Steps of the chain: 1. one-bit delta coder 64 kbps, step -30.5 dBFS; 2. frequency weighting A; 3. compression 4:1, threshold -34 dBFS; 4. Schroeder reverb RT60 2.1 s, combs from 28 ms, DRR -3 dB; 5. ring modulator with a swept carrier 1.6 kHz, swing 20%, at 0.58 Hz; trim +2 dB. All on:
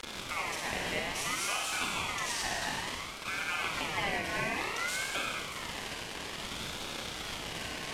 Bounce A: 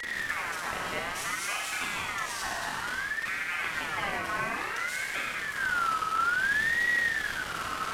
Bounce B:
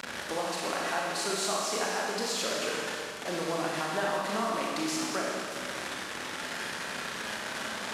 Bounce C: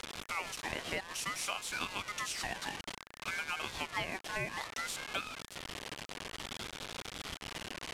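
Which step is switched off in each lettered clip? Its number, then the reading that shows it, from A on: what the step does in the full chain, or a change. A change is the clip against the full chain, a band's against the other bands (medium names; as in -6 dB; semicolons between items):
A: 2, 2 kHz band +9.0 dB; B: 5, crest factor change -2.0 dB; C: 4, loudness change -5.0 LU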